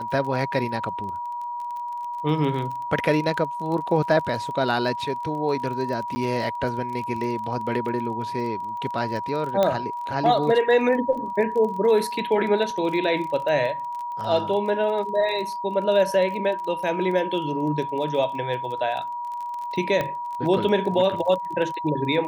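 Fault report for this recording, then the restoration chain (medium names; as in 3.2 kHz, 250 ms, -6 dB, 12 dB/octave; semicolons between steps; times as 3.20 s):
crackle 25 per s -31 dBFS
whine 960 Hz -28 dBFS
6.15–6.16 s: dropout 10 ms
9.63 s: pop -9 dBFS
20.01 s: pop -12 dBFS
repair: de-click; band-stop 960 Hz, Q 30; interpolate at 6.15 s, 10 ms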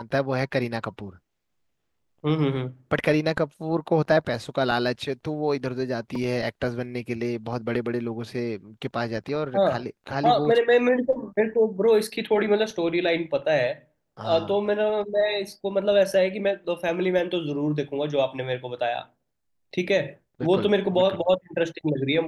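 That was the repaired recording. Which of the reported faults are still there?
nothing left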